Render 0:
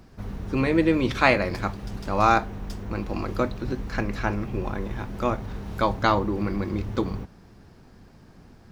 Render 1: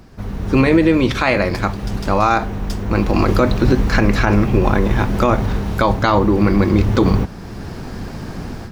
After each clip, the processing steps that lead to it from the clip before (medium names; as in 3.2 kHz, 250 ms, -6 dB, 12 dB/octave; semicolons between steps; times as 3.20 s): level rider gain up to 15.5 dB; loudness maximiser +9.5 dB; trim -2.5 dB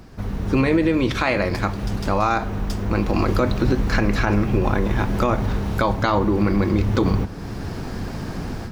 compression 1.5:1, threshold -24 dBFS, peak gain reduction 6 dB; reverberation RT60 2.1 s, pre-delay 5 ms, DRR 18 dB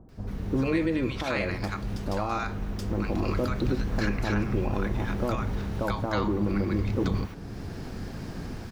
bands offset in time lows, highs 90 ms, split 960 Hz; trim -7.5 dB